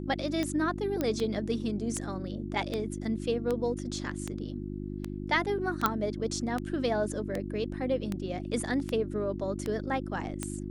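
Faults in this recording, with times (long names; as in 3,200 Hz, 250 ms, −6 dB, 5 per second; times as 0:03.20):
mains hum 50 Hz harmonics 7 −37 dBFS
scratch tick 78 rpm −18 dBFS
0:01.01: click −16 dBFS
0:05.86: click −10 dBFS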